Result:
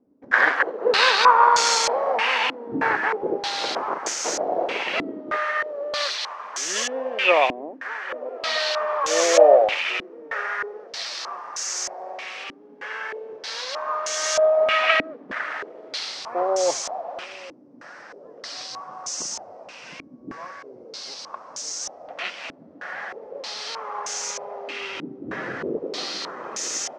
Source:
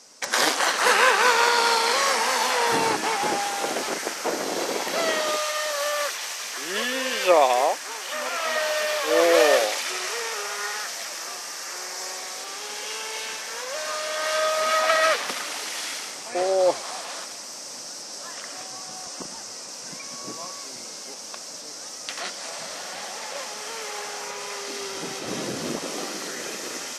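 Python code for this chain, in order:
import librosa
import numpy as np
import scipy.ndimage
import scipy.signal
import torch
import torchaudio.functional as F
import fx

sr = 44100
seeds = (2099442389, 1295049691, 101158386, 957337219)

p1 = fx.peak_eq(x, sr, hz=220.0, db=-4.5, octaves=1.3)
p2 = p1 + fx.echo_single(p1, sr, ms=810, db=-21.0, dry=0)
p3 = fx.filter_held_lowpass(p2, sr, hz=3.2, low_hz=280.0, high_hz=6600.0)
y = F.gain(torch.from_numpy(p3), -1.5).numpy()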